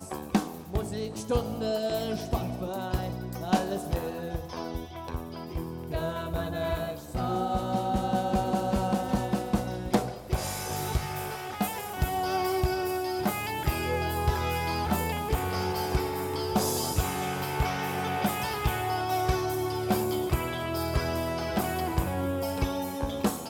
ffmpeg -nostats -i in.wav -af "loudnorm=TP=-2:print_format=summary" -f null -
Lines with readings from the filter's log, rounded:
Input Integrated:    -30.1 LUFS
Input True Peak:      -9.9 dBTP
Input LRA:             3.5 LU
Input Threshold:     -40.1 LUFS